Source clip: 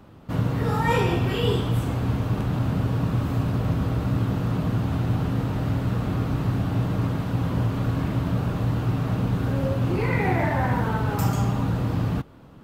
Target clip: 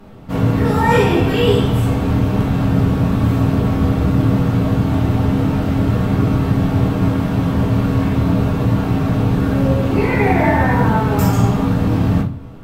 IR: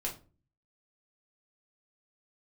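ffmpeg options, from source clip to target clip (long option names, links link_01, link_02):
-filter_complex "[1:a]atrim=start_sample=2205,asetrate=37926,aresample=44100[link_01];[0:a][link_01]afir=irnorm=-1:irlink=0,volume=5.5dB"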